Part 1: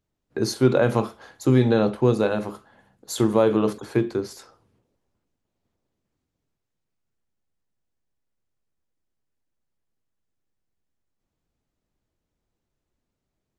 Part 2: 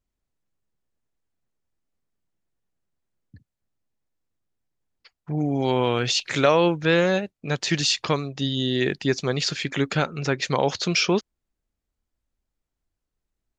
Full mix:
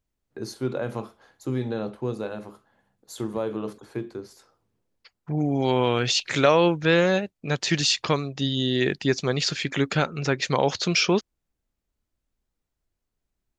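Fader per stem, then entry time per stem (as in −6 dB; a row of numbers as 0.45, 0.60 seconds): −10.0, 0.0 decibels; 0.00, 0.00 seconds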